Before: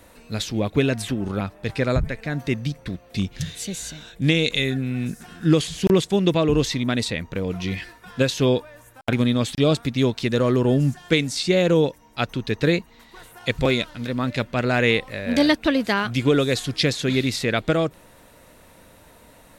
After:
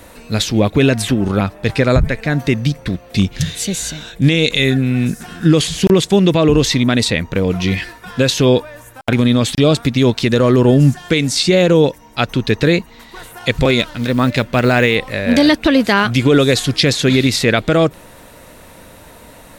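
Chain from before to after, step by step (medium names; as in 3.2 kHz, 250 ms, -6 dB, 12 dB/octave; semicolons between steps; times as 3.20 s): 13.79–14.96 s: short-mantissa float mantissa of 4-bit; loudness maximiser +11 dB; trim -1 dB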